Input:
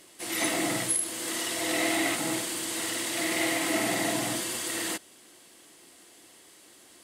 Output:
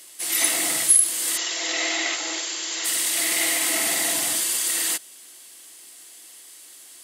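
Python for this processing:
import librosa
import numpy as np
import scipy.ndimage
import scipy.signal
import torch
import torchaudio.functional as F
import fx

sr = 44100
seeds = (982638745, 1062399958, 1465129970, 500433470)

y = fx.brickwall_bandpass(x, sr, low_hz=290.0, high_hz=7600.0, at=(1.36, 2.84), fade=0.02)
y = fx.tilt_eq(y, sr, slope=3.5)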